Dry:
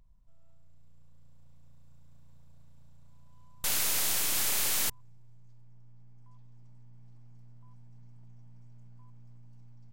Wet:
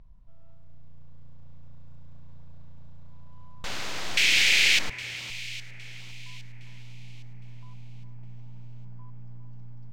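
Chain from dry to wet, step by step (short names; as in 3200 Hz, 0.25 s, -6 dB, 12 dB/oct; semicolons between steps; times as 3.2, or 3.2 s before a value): air absorption 170 m; in parallel at -2.5 dB: negative-ratio compressor -44 dBFS; 4.17–4.79 on the sum: resonant high shelf 1600 Hz +12.5 dB, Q 3; echo with dull and thin repeats by turns 0.406 s, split 2000 Hz, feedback 59%, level -12 dB; gain +2.5 dB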